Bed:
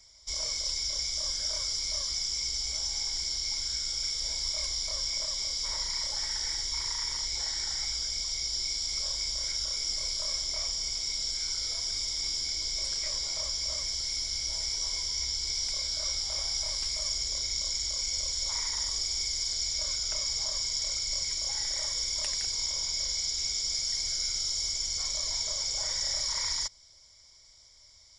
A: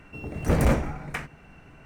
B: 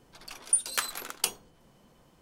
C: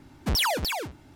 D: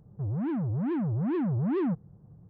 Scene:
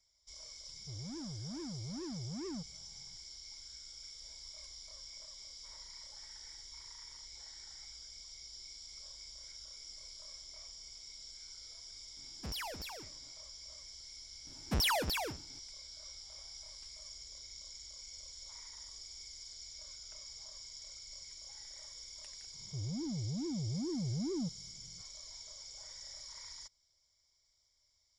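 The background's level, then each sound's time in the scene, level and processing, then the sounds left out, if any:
bed -18.5 dB
0.68 s: add D -15 dB
12.17 s: add C -17 dB
14.45 s: add C -6.5 dB + expander -49 dBFS
22.54 s: add D -8.5 dB + Bessel low-pass 520 Hz
not used: A, B

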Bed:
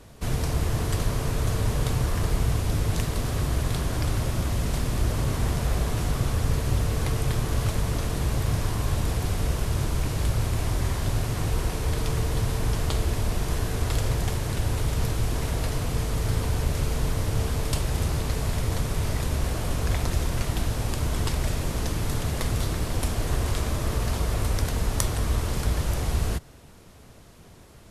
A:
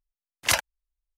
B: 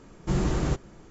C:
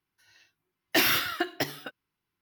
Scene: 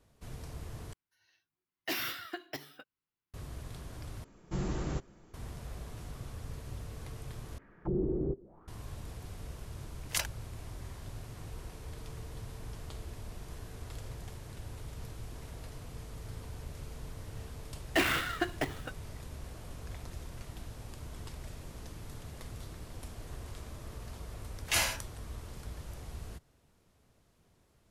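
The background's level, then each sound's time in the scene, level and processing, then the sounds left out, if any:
bed -18.5 dB
0.93 s: replace with C -12 dB
4.24 s: replace with B -9 dB
7.58 s: replace with B -10.5 dB + touch-sensitive low-pass 390–2100 Hz down, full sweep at -26.5 dBFS
9.66 s: add A -14.5 dB + treble shelf 3.8 kHz +7 dB
17.01 s: add C -2.5 dB + median filter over 9 samples
24.23 s: add A -12 dB + gated-style reverb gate 210 ms falling, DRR -5.5 dB

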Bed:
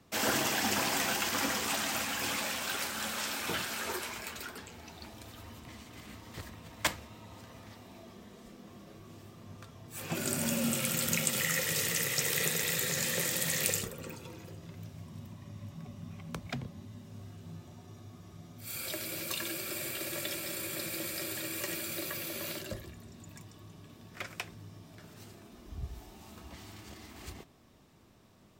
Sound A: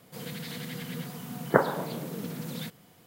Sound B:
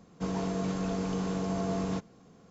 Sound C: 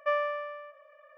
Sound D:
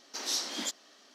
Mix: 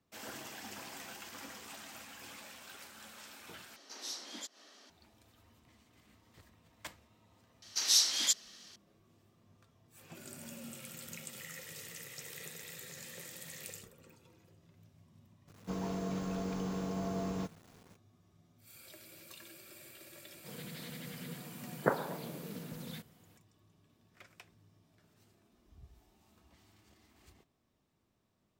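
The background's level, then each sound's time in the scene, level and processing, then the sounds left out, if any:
bed -16.5 dB
3.76 s: replace with D -10.5 dB + upward compressor, threshold -37 dBFS
7.62 s: add D -2 dB + tilt shelf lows -9.5 dB, about 1.4 kHz
15.47 s: add B -5.5 dB, fades 0.02 s + bit crusher 9-bit
20.32 s: add A -8.5 dB
not used: C

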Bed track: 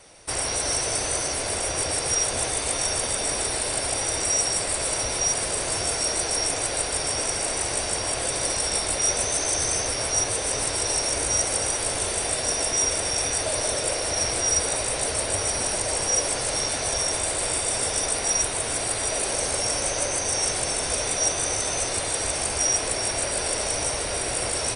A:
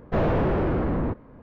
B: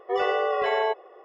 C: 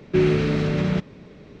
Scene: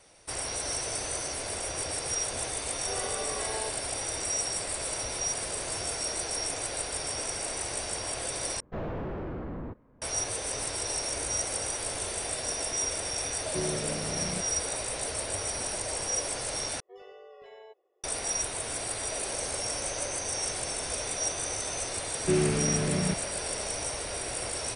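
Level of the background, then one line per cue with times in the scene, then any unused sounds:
bed track -7.5 dB
2.77 s: add B -13.5 dB
8.60 s: replace with A -12.5 dB
13.41 s: add C -15.5 dB
16.80 s: replace with B -17.5 dB + peaking EQ 1.2 kHz -14 dB 2.4 oct
22.14 s: add C -7 dB

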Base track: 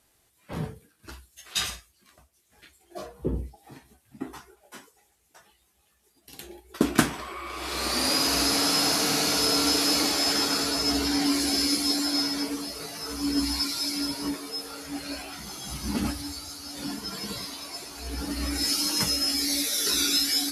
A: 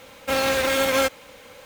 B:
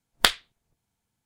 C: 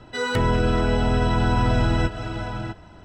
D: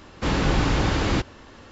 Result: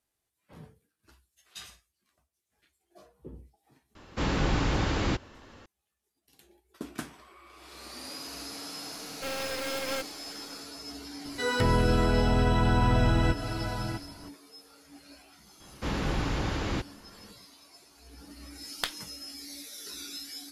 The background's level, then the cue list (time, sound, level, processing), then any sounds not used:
base track -17 dB
3.95 s: add D -5.5 dB
8.94 s: add A -10.5 dB + partial rectifier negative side -7 dB
11.25 s: add C -3.5 dB
15.60 s: add D -8.5 dB
18.59 s: add B -13 dB

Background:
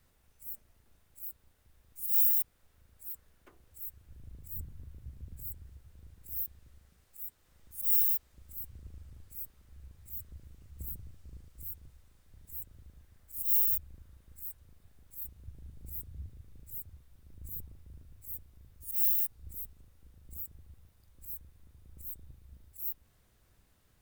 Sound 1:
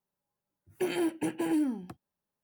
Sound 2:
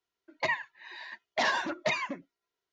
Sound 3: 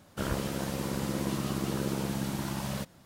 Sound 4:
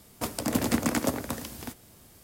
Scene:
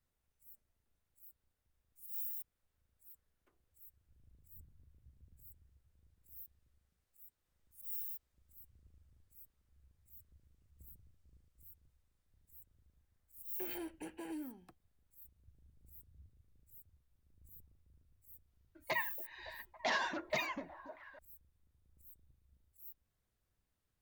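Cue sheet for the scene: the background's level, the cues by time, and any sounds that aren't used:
background -16.5 dB
12.79 s: add 1 -12.5 dB + high-pass 360 Hz 6 dB/octave
18.47 s: add 2 -7 dB + repeats whose band climbs or falls 280 ms, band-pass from 380 Hz, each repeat 0.7 oct, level -10.5 dB
not used: 3, 4

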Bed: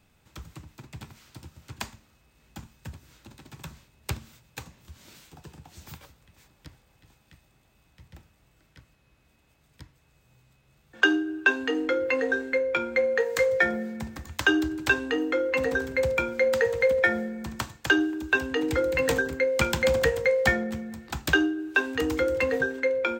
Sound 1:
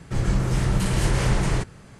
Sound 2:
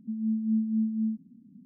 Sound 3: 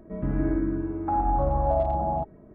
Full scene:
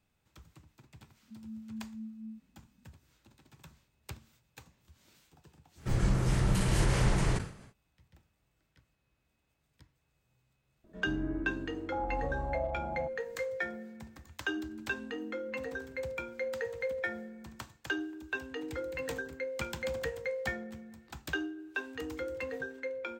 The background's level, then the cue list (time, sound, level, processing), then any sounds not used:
bed -13 dB
1.23 s: add 2 -16 dB
5.75 s: add 1 -6 dB, fades 0.10 s + decay stretcher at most 120 dB/s
10.84 s: add 3 -11.5 dB
14.49 s: add 2 -10.5 dB + peaking EQ 210 Hz -12 dB

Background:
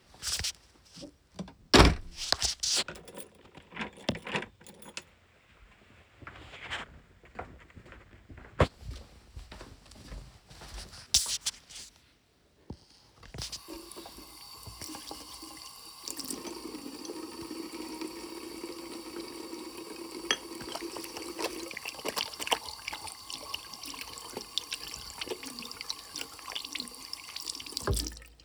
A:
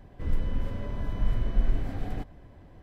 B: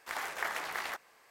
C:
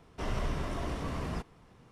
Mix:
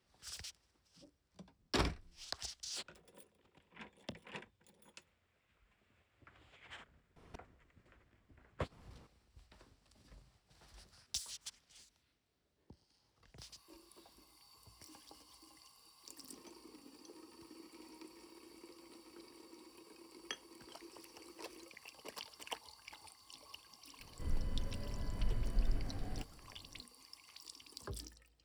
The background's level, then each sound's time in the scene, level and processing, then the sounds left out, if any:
background -16 dB
7.16 s: add C -3.5 dB + inverted gate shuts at -34 dBFS, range -40 dB
24.00 s: add A -10 dB
not used: B

